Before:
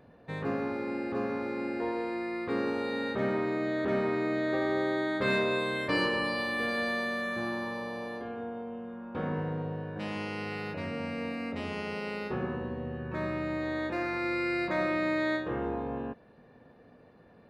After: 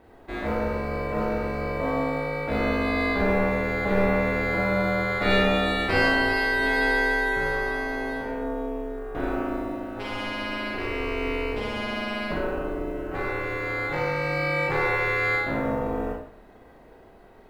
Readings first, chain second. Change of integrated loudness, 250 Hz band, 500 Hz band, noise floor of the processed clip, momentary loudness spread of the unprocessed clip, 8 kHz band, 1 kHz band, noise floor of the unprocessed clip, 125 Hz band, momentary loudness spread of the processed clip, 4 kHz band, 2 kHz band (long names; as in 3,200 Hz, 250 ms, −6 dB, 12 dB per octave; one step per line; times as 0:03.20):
+6.5 dB, +3.5 dB, +5.5 dB, −51 dBFS, 8 LU, +7.5 dB, +7.5 dB, −57 dBFS, +7.0 dB, 9 LU, +6.5 dB, +9.5 dB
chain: log-companded quantiser 8 bits
ring modulation 200 Hz
four-comb reverb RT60 0.54 s, combs from 30 ms, DRR −1.5 dB
level +5.5 dB